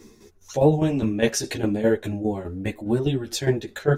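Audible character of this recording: tremolo saw down 4.9 Hz, depth 70%; a shimmering, thickened sound

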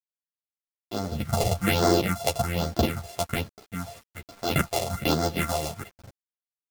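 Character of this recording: a buzz of ramps at a fixed pitch in blocks of 64 samples; phasing stages 4, 1.2 Hz, lowest notch 240–2600 Hz; a quantiser's noise floor 8-bit, dither none; a shimmering, thickened sound

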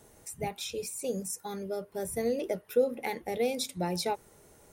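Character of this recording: noise floor -59 dBFS; spectral tilt -4.0 dB/oct

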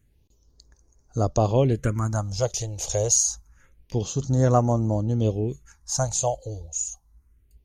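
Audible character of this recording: phasing stages 4, 0.27 Hz, lowest notch 230–3000 Hz

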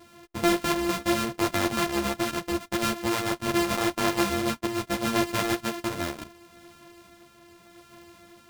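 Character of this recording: a buzz of ramps at a fixed pitch in blocks of 128 samples; tremolo triangle 0.78 Hz, depth 40%; a shimmering, thickened sound

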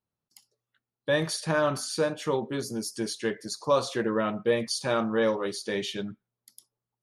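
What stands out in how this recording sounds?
noise floor -90 dBFS; spectral tilt -4.0 dB/oct

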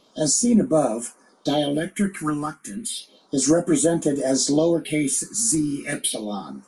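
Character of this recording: phasing stages 4, 0.32 Hz, lowest notch 550–4500 Hz

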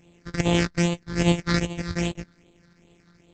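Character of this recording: a buzz of ramps at a fixed pitch in blocks of 256 samples; phasing stages 6, 2.5 Hz, lowest notch 730–1500 Hz; Opus

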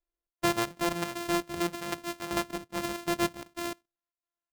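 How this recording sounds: a buzz of ramps at a fixed pitch in blocks of 128 samples; chopped level 2.6 Hz, depth 65%, duty 70%

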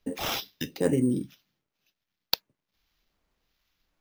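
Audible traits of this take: phasing stages 2, 1.3 Hz, lowest notch 550–4300 Hz; aliases and images of a low sample rate 8800 Hz, jitter 0%

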